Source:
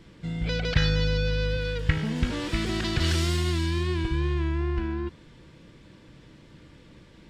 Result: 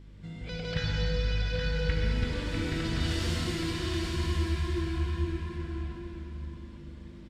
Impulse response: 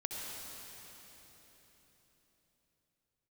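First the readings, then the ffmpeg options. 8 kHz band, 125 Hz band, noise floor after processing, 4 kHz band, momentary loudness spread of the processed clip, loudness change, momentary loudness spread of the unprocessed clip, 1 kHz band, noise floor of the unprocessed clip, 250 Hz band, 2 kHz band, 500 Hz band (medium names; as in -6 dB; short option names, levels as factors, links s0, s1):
-4.0 dB, -4.0 dB, -46 dBFS, -4.0 dB, 12 LU, -4.5 dB, 5 LU, -4.0 dB, -52 dBFS, -4.0 dB, -4.5 dB, -4.5 dB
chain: -filter_complex "[0:a]aeval=exprs='val(0)+0.0112*(sin(2*PI*50*n/s)+sin(2*PI*2*50*n/s)/2+sin(2*PI*3*50*n/s)/3+sin(2*PI*4*50*n/s)/4+sin(2*PI*5*50*n/s)/5)':c=same,aecho=1:1:824:0.562[s0];[1:a]atrim=start_sample=2205[s1];[s0][s1]afir=irnorm=-1:irlink=0,volume=0.447"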